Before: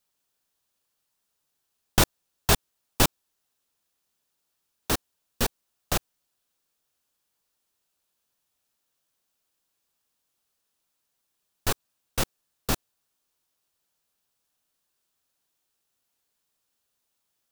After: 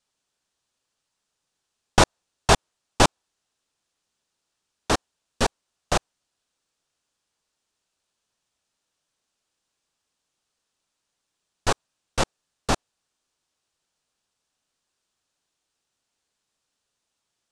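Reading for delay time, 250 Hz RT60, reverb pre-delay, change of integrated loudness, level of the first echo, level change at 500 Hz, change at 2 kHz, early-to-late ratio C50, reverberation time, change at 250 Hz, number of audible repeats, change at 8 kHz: none, none, none, +3.0 dB, none, +6.5 dB, +4.5 dB, none, none, +3.5 dB, none, +0.5 dB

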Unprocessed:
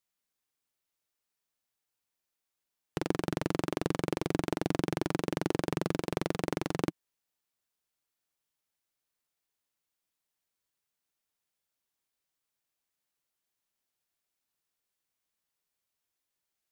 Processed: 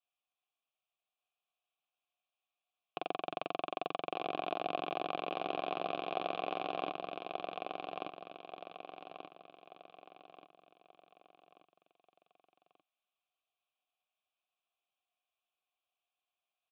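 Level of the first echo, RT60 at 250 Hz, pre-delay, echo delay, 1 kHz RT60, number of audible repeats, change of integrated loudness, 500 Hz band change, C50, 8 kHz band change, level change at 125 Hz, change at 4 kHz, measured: -3.5 dB, none, none, 1.183 s, none, 5, -6.0 dB, -4.0 dB, none, under -30 dB, -20.0 dB, -1.0 dB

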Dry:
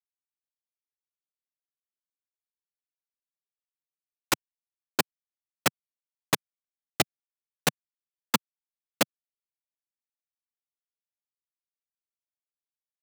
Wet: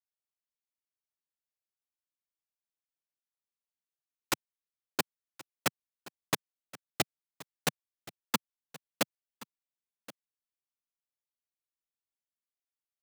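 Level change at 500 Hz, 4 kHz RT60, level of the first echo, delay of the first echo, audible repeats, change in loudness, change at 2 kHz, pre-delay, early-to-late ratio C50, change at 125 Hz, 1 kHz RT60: -5.5 dB, none, -19.0 dB, 1.075 s, 1, -5.5 dB, -5.5 dB, none, none, -5.5 dB, none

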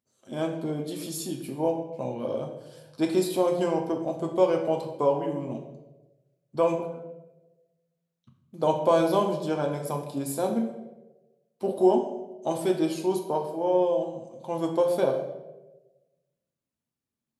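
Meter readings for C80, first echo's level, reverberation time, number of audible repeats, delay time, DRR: 9.5 dB, none, 1.1 s, none, none, 2.0 dB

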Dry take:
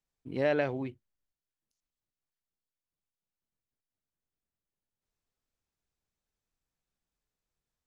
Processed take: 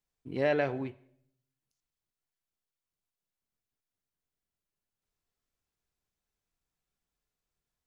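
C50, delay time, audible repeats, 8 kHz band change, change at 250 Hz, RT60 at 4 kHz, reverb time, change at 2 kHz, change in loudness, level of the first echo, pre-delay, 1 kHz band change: 17.5 dB, none, none, n/a, -0.5 dB, 0.60 s, 0.60 s, +0.5 dB, 0.0 dB, none, 3 ms, +1.5 dB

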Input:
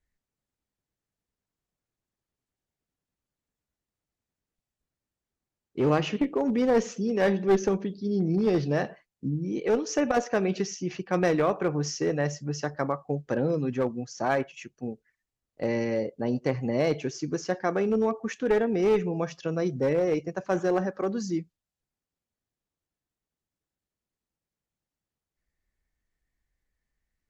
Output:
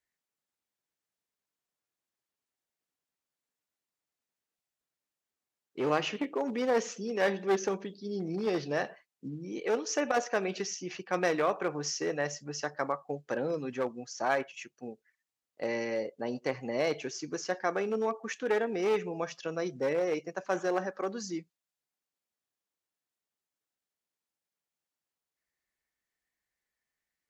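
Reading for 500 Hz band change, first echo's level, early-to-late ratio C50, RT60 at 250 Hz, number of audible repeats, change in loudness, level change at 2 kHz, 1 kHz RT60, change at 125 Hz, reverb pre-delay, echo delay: -5.0 dB, none, none, none, none, -5.0 dB, -0.5 dB, none, -12.5 dB, none, none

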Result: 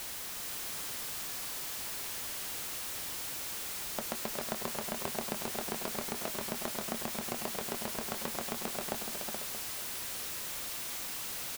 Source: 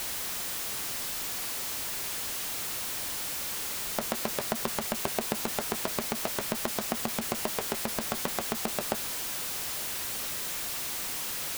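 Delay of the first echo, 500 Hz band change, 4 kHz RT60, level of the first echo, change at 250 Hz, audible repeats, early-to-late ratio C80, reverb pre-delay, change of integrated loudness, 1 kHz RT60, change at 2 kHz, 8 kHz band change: 0.367 s, -5.0 dB, none, -8.0 dB, -5.0 dB, 3, none, none, -5.0 dB, none, -5.0 dB, -5.0 dB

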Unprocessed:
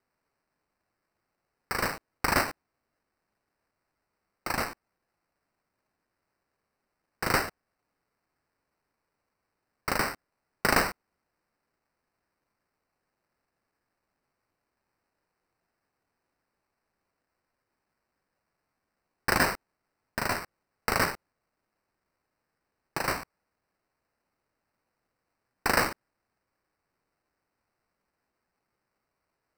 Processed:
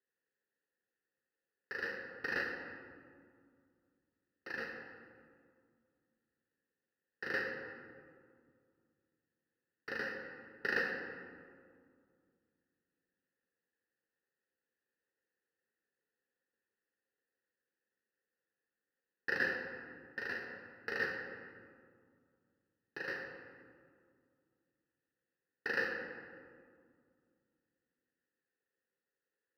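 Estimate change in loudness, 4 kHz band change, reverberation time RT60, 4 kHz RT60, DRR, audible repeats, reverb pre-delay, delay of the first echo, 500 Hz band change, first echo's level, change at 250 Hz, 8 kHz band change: -10.5 dB, -15.5 dB, 2.1 s, 1.1 s, 1.0 dB, none, 3 ms, none, -9.0 dB, none, -12.5 dB, under -25 dB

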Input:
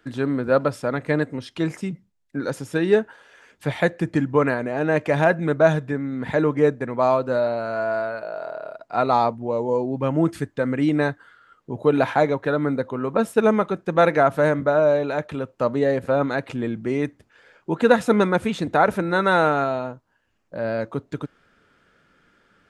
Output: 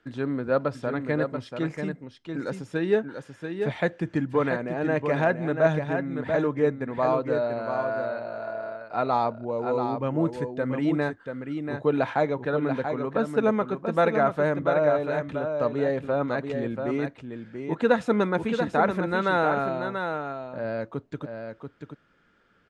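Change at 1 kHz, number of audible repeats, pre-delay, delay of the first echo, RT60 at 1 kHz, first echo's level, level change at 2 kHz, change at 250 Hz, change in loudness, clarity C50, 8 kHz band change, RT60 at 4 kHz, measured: -4.5 dB, 1, none, 0.686 s, none, -6.5 dB, -4.5 dB, -4.0 dB, -4.5 dB, none, n/a, none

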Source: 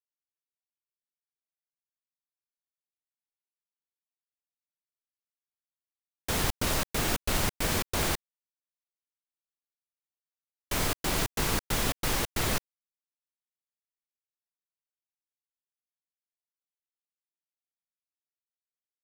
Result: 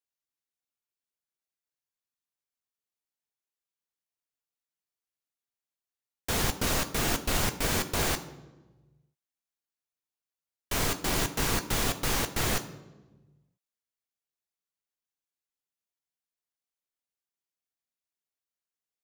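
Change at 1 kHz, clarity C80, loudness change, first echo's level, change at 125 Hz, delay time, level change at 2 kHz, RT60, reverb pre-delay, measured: +0.5 dB, 15.5 dB, +0.5 dB, none, +0.5 dB, none, +0.5 dB, 1.2 s, 3 ms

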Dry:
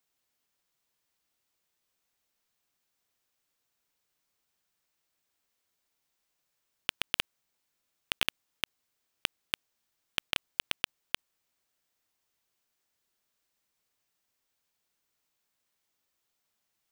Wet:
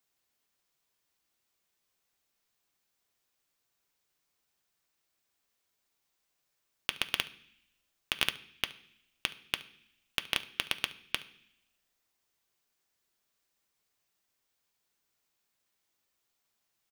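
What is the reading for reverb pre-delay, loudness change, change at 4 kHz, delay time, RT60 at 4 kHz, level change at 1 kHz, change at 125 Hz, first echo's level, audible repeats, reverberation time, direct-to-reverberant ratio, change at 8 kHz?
3 ms, +0.5 dB, +0.5 dB, 71 ms, 0.85 s, +0.5 dB, +0.5 dB, -21.0 dB, 1, 0.65 s, 9.0 dB, 0.0 dB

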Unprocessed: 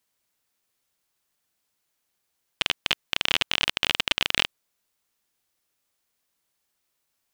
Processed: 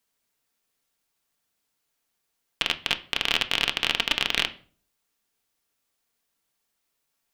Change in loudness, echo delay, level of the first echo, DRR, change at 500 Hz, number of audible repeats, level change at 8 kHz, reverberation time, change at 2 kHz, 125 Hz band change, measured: -0.5 dB, none, none, 6.5 dB, 0.0 dB, none, -1.0 dB, 0.45 s, 0.0 dB, -1.0 dB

